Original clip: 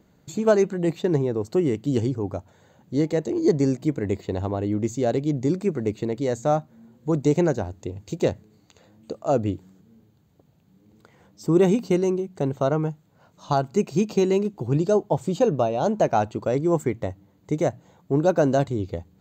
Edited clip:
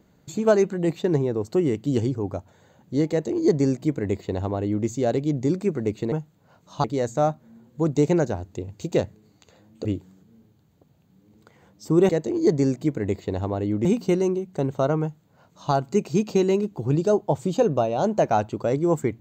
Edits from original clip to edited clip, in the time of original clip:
0:03.10–0:04.86: duplicate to 0:11.67
0:09.13–0:09.43: remove
0:12.83–0:13.55: duplicate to 0:06.12

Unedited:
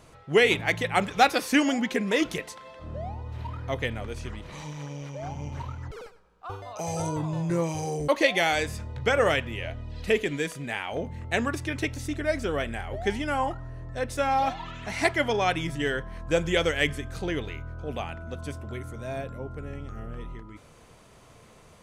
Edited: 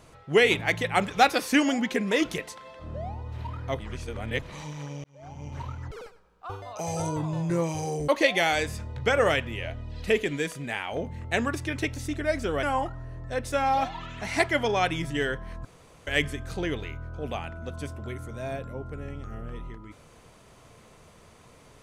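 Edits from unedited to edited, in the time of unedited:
0:03.79–0:04.42: reverse
0:05.04–0:05.66: fade in
0:12.63–0:13.28: remove
0:16.30–0:16.72: fill with room tone

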